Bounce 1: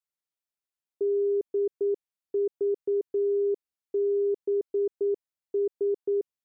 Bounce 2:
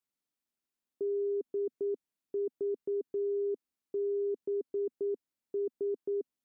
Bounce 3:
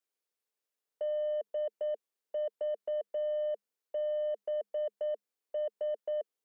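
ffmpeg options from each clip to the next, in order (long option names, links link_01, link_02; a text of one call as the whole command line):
ffmpeg -i in.wav -af "equalizer=frequency=250:width_type=o:width=0.99:gain=11.5,alimiter=level_in=4.5dB:limit=-24dB:level=0:latency=1:release=25,volume=-4.5dB" out.wav
ffmpeg -i in.wav -af "afreqshift=200,aeval=exprs='0.0422*(cos(1*acos(clip(val(0)/0.0422,-1,1)))-cos(1*PI/2))+0.000376*(cos(2*acos(clip(val(0)/0.0422,-1,1)))-cos(2*PI/2))+0.00299*(cos(3*acos(clip(val(0)/0.0422,-1,1)))-cos(3*PI/2))+0.00188*(cos(5*acos(clip(val(0)/0.0422,-1,1)))-cos(5*PI/2))':channel_layout=same" out.wav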